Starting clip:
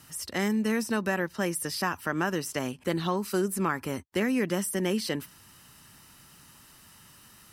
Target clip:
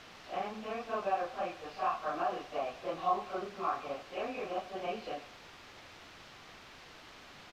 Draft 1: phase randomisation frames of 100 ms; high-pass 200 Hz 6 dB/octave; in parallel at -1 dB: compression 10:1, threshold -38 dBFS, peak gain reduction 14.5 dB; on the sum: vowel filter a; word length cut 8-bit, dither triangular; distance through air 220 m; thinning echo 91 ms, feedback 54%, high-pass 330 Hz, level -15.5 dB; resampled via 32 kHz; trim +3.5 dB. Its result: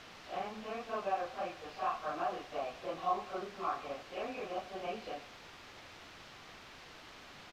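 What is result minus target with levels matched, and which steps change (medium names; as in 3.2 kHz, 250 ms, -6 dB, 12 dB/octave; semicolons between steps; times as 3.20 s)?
compression: peak gain reduction +9.5 dB
change: compression 10:1, threshold -27.5 dBFS, peak gain reduction 5 dB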